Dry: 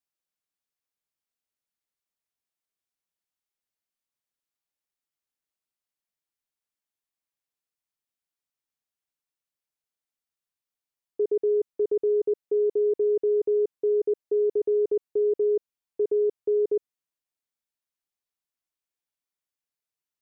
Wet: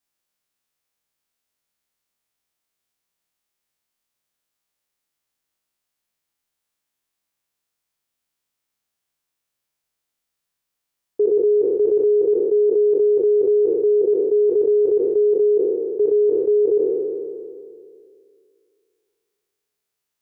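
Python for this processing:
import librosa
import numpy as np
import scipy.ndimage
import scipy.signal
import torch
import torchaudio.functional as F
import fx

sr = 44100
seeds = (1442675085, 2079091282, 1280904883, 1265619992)

y = fx.spec_trails(x, sr, decay_s=2.37)
y = y * librosa.db_to_amplitude(6.5)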